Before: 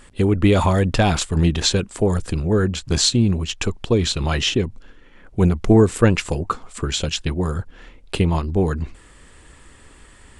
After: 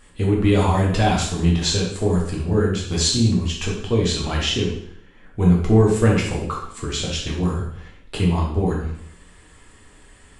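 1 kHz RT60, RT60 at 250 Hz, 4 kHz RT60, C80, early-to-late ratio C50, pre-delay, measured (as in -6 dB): 0.70 s, 0.70 s, 0.65 s, 7.0 dB, 3.5 dB, 4 ms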